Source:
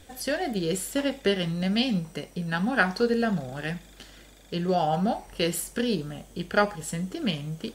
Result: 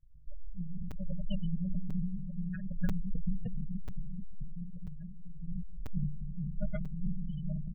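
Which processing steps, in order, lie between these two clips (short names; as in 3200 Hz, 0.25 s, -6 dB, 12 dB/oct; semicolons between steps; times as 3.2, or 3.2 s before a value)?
low-pass opened by the level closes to 310 Hz, open at -19.5 dBFS; half-wave rectifier; 3.32–5.48 compressor 10:1, threshold -35 dBFS, peak gain reduction 14.5 dB; elliptic band-stop 200–550 Hz, stop band 40 dB; passive tone stack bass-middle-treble 10-0-1; comb 6.7 ms, depth 61%; repeats that get brighter 0.434 s, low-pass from 400 Hz, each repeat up 1 oct, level -3 dB; Schroeder reverb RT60 1.9 s, combs from 27 ms, DRR 2.5 dB; spectral gate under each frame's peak -20 dB strong; crackling interface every 0.99 s, samples 256, zero, from 0.91; sustainer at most 26 dB/s; gain +6 dB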